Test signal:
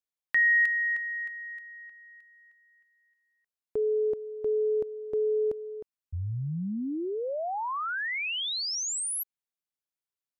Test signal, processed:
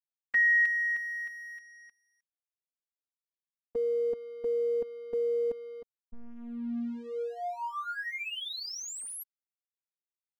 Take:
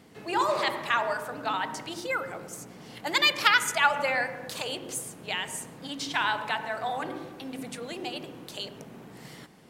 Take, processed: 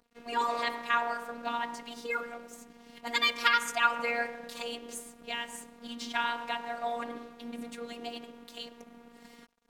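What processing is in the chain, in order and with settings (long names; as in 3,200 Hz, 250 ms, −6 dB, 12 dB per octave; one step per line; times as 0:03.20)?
dead-zone distortion −50 dBFS
high-shelf EQ 4,100 Hz −6 dB
phases set to zero 236 Hz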